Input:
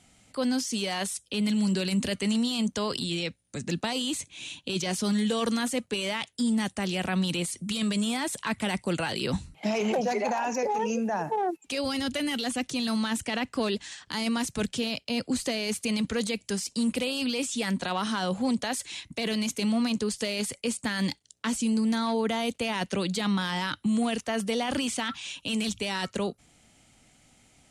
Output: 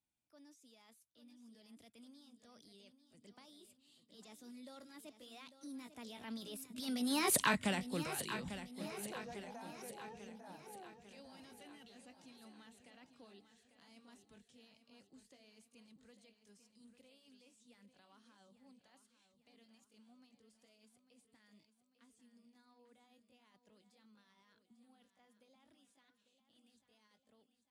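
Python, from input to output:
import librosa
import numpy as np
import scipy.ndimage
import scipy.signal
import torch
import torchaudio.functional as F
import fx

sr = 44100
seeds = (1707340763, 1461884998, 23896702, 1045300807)

p1 = fx.pitch_glide(x, sr, semitones=4.0, runs='starting unshifted')
p2 = fx.doppler_pass(p1, sr, speed_mps=41, closest_m=2.9, pass_at_s=7.38)
p3 = p2 + fx.echo_feedback(p2, sr, ms=847, feedback_pct=52, wet_db=-11.0, dry=0)
y = p3 * librosa.db_to_amplitude(6.0)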